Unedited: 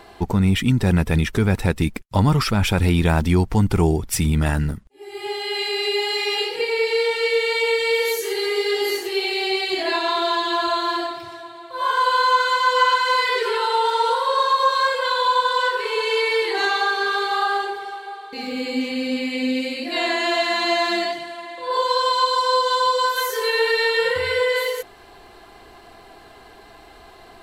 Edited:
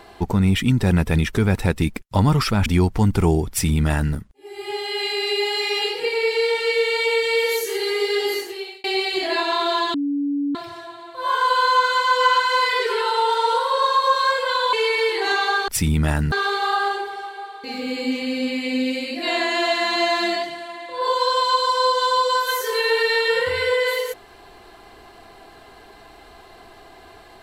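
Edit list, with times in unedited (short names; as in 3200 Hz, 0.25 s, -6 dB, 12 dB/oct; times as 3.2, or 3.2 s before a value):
2.66–3.22 cut
4.06–4.7 copy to 17.01
8.8–9.4 fade out
10.5–11.11 bleep 285 Hz -19.5 dBFS
15.29–16.06 cut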